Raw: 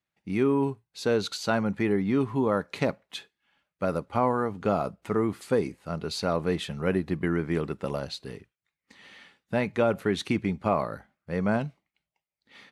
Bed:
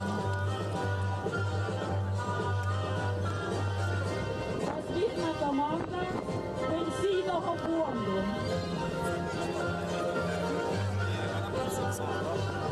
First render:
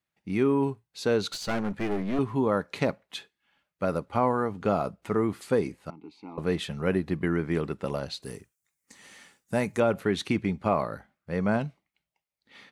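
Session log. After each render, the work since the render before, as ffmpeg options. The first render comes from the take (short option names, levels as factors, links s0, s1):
-filter_complex "[0:a]asettb=1/sr,asplit=3[s0][s1][s2];[s0]atrim=end=1.304[s3];[s1]atrim=start=1.3:end=2.19,asetpts=PTS-STARTPTS,afade=t=in:d=0.004:c=qsin,afade=t=out:st=0.886:d=0.004:c=qsin,aeval=exprs='clip(val(0),-1,0.02)':c=same[s4];[s2]atrim=start=2.186[s5];[s3][s4]acrossfade=d=0.004:c1=hsin:c2=qsin[s6];[s6][s5]acrossfade=d=0.004:c1=qsin:c2=hsin,asettb=1/sr,asplit=3[s7][s8][s9];[s7]atrim=end=5.904[s10];[s8]atrim=start=5.9:end=6.38,asetpts=PTS-STARTPTS,afade=t=in:d=0.004:c=qsin,afade=t=out:st=0.476:d=0.004:c=qsin,asplit=3[s11][s12][s13];[s11]bandpass=f=300:t=q:w=8,volume=1[s14];[s12]bandpass=f=870:t=q:w=8,volume=0.501[s15];[s13]bandpass=f=2240:t=q:w=8,volume=0.355[s16];[s14][s15][s16]amix=inputs=3:normalize=0[s17];[s9]atrim=start=6.376[s18];[s10][s17]acrossfade=d=0.004:c1=hsin:c2=qsin[s19];[s19][s18]acrossfade=d=0.004:c1=qsin:c2=hsin,asettb=1/sr,asplit=3[s20][s21][s22];[s20]atrim=end=8.224[s23];[s21]atrim=start=8.22:end=9.8,asetpts=PTS-STARTPTS,afade=t=in:d=0.004:c=qsin,afade=t=out:st=1.576:d=0.004:c=qsin,highshelf=f=5200:t=q:w=1.5:g=12[s24];[s22]atrim=start=9.796[s25];[s23][s24]acrossfade=d=0.004:c1=hsin:c2=qsin[s26];[s26][s25]acrossfade=d=0.004:c1=qsin:c2=hsin"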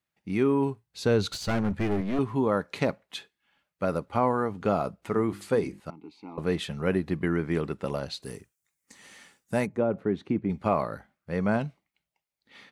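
-filter_complex "[0:a]asettb=1/sr,asplit=3[s0][s1][s2];[s0]atrim=end=0.874[s3];[s1]atrim=start=0.87:end=2.01,asetpts=PTS-STARTPTS,afade=t=in:d=0.004:c=qsin,afade=t=out:st=1.136:d=0.004:c=qsin,equalizer=f=74:t=o:w=1.8:g=12.5[s4];[s2]atrim=start=2.006[s5];[s3][s4]acrossfade=d=0.004:c1=hsin:c2=qsin[s6];[s6][s5]acrossfade=d=0.004:c1=qsin:c2=hsin,asettb=1/sr,asplit=3[s7][s8][s9];[s7]atrim=end=5.104[s10];[s8]atrim=start=5.1:end=5.8,asetpts=PTS-STARTPTS,afade=t=in:d=0.004:c=qsin,afade=t=out:st=0.696:d=0.004:c=qsin,bandreject=f=50:t=h:w=6,bandreject=f=100:t=h:w=6,bandreject=f=150:t=h:w=6,bandreject=f=200:t=h:w=6,bandreject=f=250:t=h:w=6,bandreject=f=300:t=h:w=6,bandreject=f=350:t=h:w=6[s11];[s9]atrim=start=5.796[s12];[s10][s11]acrossfade=d=0.004:c1=hsin:c2=qsin[s13];[s13][s12]acrossfade=d=0.004:c1=qsin:c2=hsin,asplit=3[s14][s15][s16];[s14]afade=t=out:st=9.65:d=0.02[s17];[s15]bandpass=f=260:t=q:w=0.53,afade=t=in:st=9.65:d=0.02,afade=t=out:st=10.49:d=0.02[s18];[s16]afade=t=in:st=10.49:d=0.02[s19];[s17][s18][s19]amix=inputs=3:normalize=0"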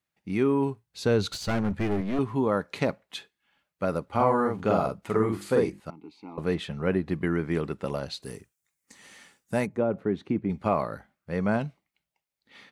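-filter_complex "[0:a]asettb=1/sr,asplit=3[s0][s1][s2];[s0]atrim=end=4.144[s3];[s1]atrim=start=4.14:end=5.7,asetpts=PTS-STARTPTS,afade=t=in:d=0.004:c=qsin,afade=t=out:st=1.556:d=0.004:c=qsin,asplit=2[s4][s5];[s5]adelay=46,volume=0.794[s6];[s4][s6]amix=inputs=2:normalize=0,atrim=end_sample=68796[s7];[s2]atrim=start=5.696[s8];[s3][s7]acrossfade=d=0.004:c1=hsin:c2=qsin[s9];[s9][s8]acrossfade=d=0.004:c1=qsin:c2=hsin,asettb=1/sr,asplit=3[s10][s11][s12];[s10]atrim=end=6.544[s13];[s11]atrim=start=6.54:end=7.09,asetpts=PTS-STARTPTS,afade=t=in:d=0.004:c=qsin,afade=t=out:st=0.546:d=0.004:c=qsin,aemphasis=mode=reproduction:type=cd[s14];[s12]atrim=start=7.086[s15];[s13][s14]acrossfade=d=0.004:c1=hsin:c2=qsin[s16];[s16][s15]acrossfade=d=0.004:c1=qsin:c2=hsin"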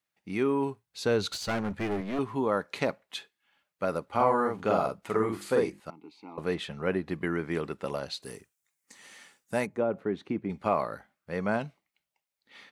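-af "lowshelf=f=240:g=-9.5"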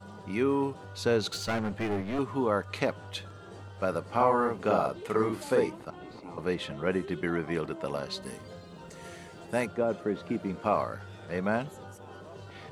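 -filter_complex "[1:a]volume=0.2[s0];[0:a][s0]amix=inputs=2:normalize=0"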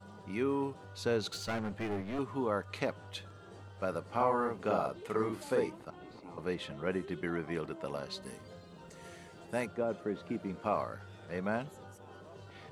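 -af "volume=0.531"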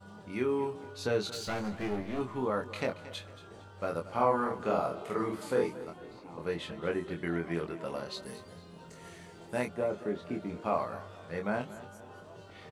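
-filter_complex "[0:a]asplit=2[s0][s1];[s1]adelay=24,volume=0.631[s2];[s0][s2]amix=inputs=2:normalize=0,aecho=1:1:228|456|684:0.168|0.0621|0.023"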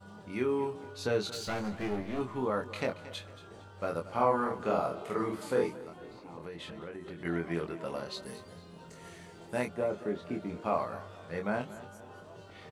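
-filter_complex "[0:a]asettb=1/sr,asplit=3[s0][s1][s2];[s0]atrim=end=5.704[s3];[s1]atrim=start=5.7:end=7.25,asetpts=PTS-STARTPTS,afade=t=in:d=0.004:c=qsin,afade=t=out:st=1.546:d=0.004:c=qsin,acompressor=threshold=0.0112:ratio=6:attack=3.2:release=140:knee=1:detection=peak[s4];[s2]atrim=start=7.246[s5];[s3][s4]acrossfade=d=0.004:c1=hsin:c2=qsin[s6];[s6][s5]acrossfade=d=0.004:c1=qsin:c2=hsin"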